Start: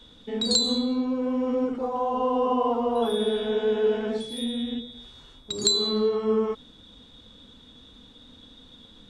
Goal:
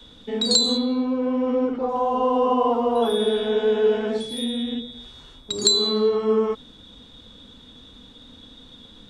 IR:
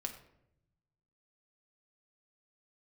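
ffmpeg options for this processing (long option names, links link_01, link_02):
-filter_complex "[0:a]asettb=1/sr,asplit=3[link_01][link_02][link_03];[link_01]atrim=end=0.774[link_04];[link_02]atrim=start=0.77:end=1.89,asetpts=PTS-STARTPTS,afade=type=in:duration=0.004:curve=qsin,afade=type=out:start_time=1.116:duration=0.004:curve=qsin,lowpass=4400[link_05];[link_03]atrim=start=1.886[link_06];[link_04][link_05]acrossfade=duration=0.004:curve1=hsin:curve2=qsin[link_07];[link_07][link_06]acrossfade=duration=0.004:curve1=qsin:curve2=hsin,acrossover=split=190|850|1900[link_08][link_09][link_10][link_11];[link_08]alimiter=level_in=17.5dB:limit=-24dB:level=0:latency=1,volume=-17.5dB[link_12];[link_12][link_09][link_10][link_11]amix=inputs=4:normalize=0,volume=4dB"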